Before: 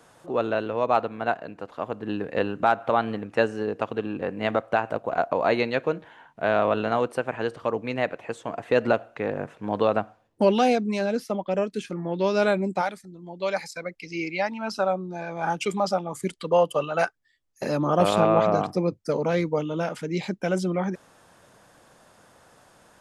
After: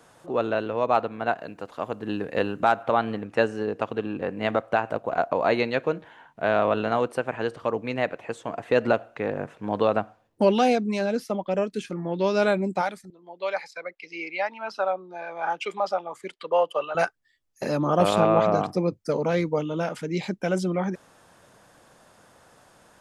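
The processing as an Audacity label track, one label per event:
1.370000	2.820000	high shelf 4600 Hz -> 7600 Hz +9.5 dB
13.100000	16.950000	three-band isolator lows -20 dB, under 400 Hz, highs -15 dB, over 4100 Hz

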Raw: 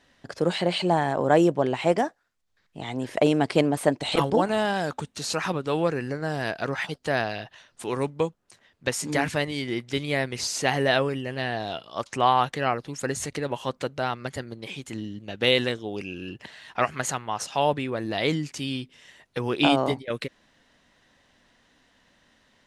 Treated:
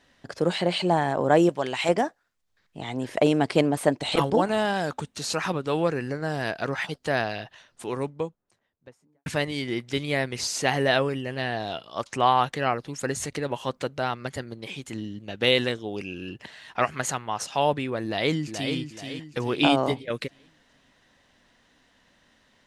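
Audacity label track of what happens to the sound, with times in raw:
1.490000	1.890000	tilt shelf lows -8 dB, about 1100 Hz
7.430000	9.260000	studio fade out
18.040000	18.760000	echo throw 0.43 s, feedback 40%, level -7 dB

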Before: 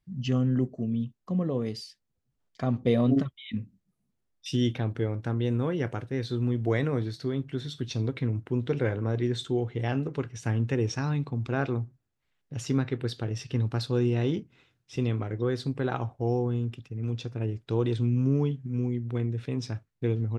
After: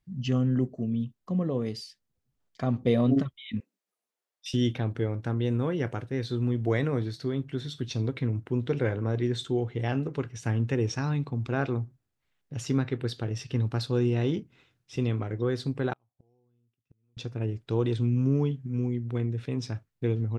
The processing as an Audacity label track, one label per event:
3.600000	4.540000	HPF 450 Hz 24 dB/oct
15.930000	17.170000	flipped gate shuts at -34 dBFS, range -42 dB

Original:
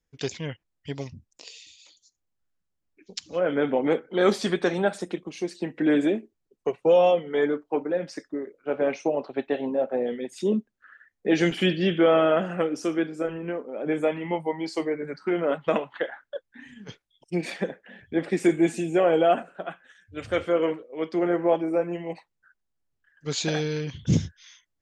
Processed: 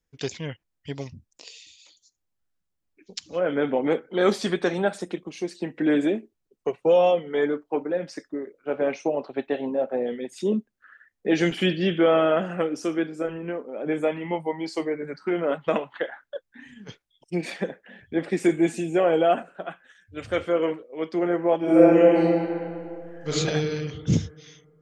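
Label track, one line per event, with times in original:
21.580000	23.290000	reverb throw, RT60 2.4 s, DRR -11.5 dB

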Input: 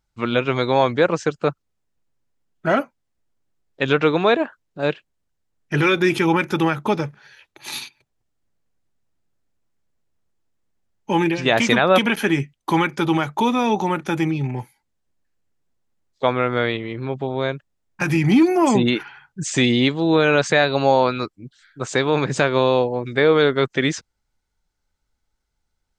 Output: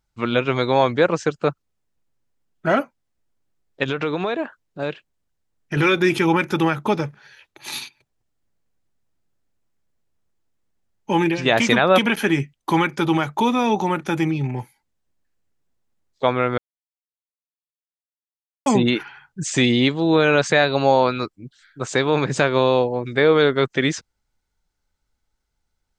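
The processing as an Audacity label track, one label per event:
3.830000	5.770000	compressor, threshold -19 dBFS
16.580000	18.660000	mute

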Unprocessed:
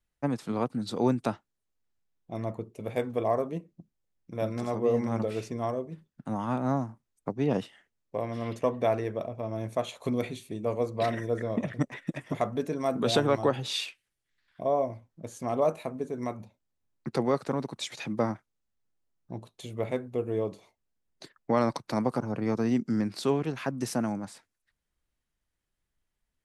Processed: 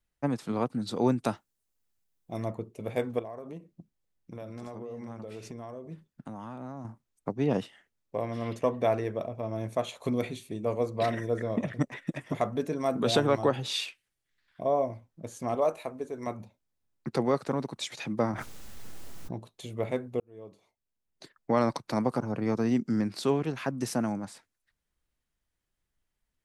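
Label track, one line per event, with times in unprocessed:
1.250000	2.480000	high shelf 6000 Hz +10.5 dB
3.190000	6.850000	compressor 16:1, threshold -36 dBFS
15.550000	16.270000	bell 170 Hz -10 dB 1.3 oct
18.330000	19.350000	fast leveller amount 100%
20.200000	21.570000	fade in

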